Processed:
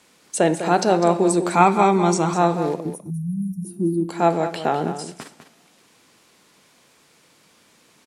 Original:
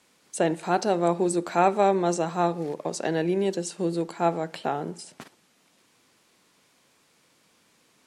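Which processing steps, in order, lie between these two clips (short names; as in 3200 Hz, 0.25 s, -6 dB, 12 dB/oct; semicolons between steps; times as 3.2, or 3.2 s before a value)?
1.54–2.34 comb 0.9 ms, depth 64%; 2.8–4.09 spectral gain 380–9000 Hz -27 dB; two-slope reverb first 0.84 s, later 2.8 s, DRR 16 dB; in parallel at -3 dB: level quantiser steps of 18 dB; 2.9–3.65 on the sum: brick-wall FIR band-stop 210–5300 Hz; on a send: echo 0.201 s -10.5 dB; on the sum: gain +4.5 dB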